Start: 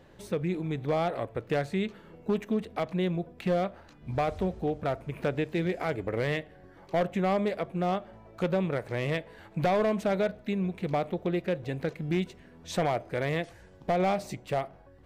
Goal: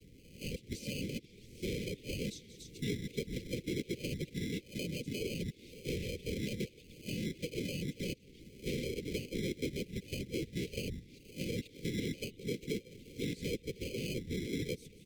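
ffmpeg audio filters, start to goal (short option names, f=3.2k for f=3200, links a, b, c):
-filter_complex "[0:a]areverse,aecho=1:1:6.4:0.6,afftfilt=real='hypot(re,im)*cos(2*PI*random(0))':imag='hypot(re,im)*sin(2*PI*random(1))':win_size=512:overlap=0.75,acrossover=split=3400[a][b];[a]acrusher=samples=24:mix=1:aa=0.000001[c];[b]aecho=1:1:186|291:0.112|0.266[d];[c][d]amix=inputs=2:normalize=0,acrossover=split=360|5800[e][f][g];[e]acompressor=threshold=-44dB:ratio=4[h];[f]acompressor=threshold=-41dB:ratio=4[i];[g]acompressor=threshold=-58dB:ratio=4[j];[h][i][j]amix=inputs=3:normalize=0,asuperstop=centerf=1000:order=12:qfactor=0.67,volume=5dB" -ar 44100 -c:a libmp3lame -b:a 192k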